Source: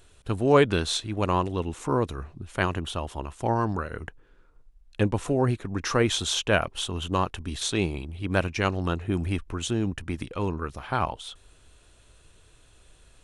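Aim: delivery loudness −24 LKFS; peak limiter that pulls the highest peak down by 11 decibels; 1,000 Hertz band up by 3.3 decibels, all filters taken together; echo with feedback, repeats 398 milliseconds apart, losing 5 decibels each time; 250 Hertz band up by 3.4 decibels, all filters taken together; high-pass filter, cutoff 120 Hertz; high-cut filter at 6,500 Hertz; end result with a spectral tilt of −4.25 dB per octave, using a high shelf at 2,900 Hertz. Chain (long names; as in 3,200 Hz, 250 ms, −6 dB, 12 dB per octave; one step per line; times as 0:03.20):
high-pass filter 120 Hz
low-pass filter 6,500 Hz
parametric band 250 Hz +4.5 dB
parametric band 1,000 Hz +3 dB
high-shelf EQ 2,900 Hz +5.5 dB
brickwall limiter −14 dBFS
repeating echo 398 ms, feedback 56%, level −5 dB
level +3 dB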